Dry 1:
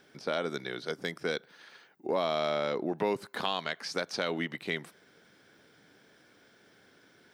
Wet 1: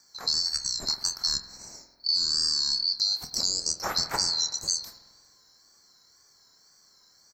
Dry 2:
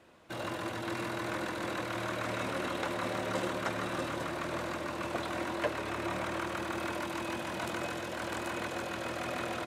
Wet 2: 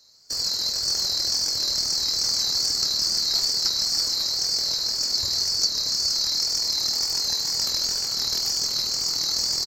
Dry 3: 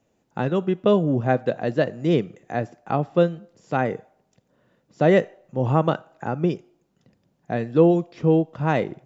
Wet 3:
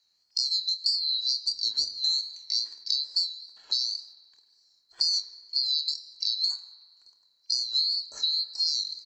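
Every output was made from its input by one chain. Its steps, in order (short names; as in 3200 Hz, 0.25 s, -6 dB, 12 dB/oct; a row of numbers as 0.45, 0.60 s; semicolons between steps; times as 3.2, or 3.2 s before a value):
band-swap scrambler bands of 4000 Hz; compressor 10:1, threshold -29 dBFS; wow and flutter 77 cents; bell 2800 Hz -8.5 dB 0.57 oct; gate -56 dBFS, range -7 dB; doubler 27 ms -11.5 dB; spring tank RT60 1.6 s, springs 47 ms, chirp 50 ms, DRR 9 dB; normalise peaks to -9 dBFS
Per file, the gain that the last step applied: +8.5, +12.5, +6.0 dB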